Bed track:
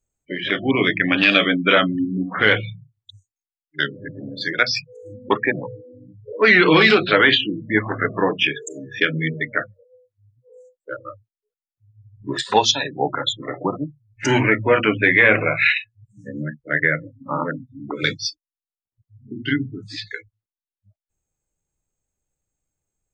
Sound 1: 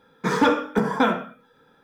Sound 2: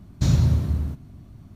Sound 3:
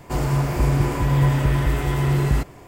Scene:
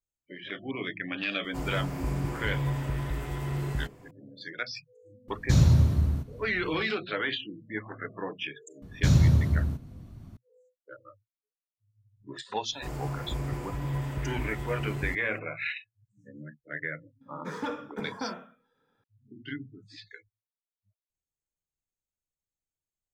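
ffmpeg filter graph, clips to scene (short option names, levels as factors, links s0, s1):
-filter_complex "[3:a]asplit=2[s0][s1];[2:a]asplit=2[s2][s3];[0:a]volume=0.15[s4];[s2]equalizer=f=210:w=1.5:g=-2[s5];[s0]atrim=end=2.67,asetpts=PTS-STARTPTS,volume=0.251,afade=t=in:d=0.004:c=hsin,afade=t=out:st=2.666:d=0.004:c=hsin,adelay=1440[s6];[s5]atrim=end=1.55,asetpts=PTS-STARTPTS,volume=0.944,afade=t=in:d=0.004:c=hsin,afade=t=out:st=1.546:d=0.004:c=hsin,adelay=5280[s7];[s3]atrim=end=1.55,asetpts=PTS-STARTPTS,volume=0.841,afade=t=in:d=0.004:c=hsin,afade=t=out:st=1.546:d=0.004:c=hsin,adelay=388962S[s8];[s1]atrim=end=2.67,asetpts=PTS-STARTPTS,volume=0.2,afade=t=in:d=0.004:c=hsin,afade=t=out:st=2.666:d=0.004:c=hsin,adelay=12720[s9];[1:a]atrim=end=1.83,asetpts=PTS-STARTPTS,volume=0.168,afade=t=in:d=0.004:c=hsin,afade=t=out:st=1.826:d=0.004:c=hsin,adelay=17210[s10];[s4][s6][s7][s8][s9][s10]amix=inputs=6:normalize=0"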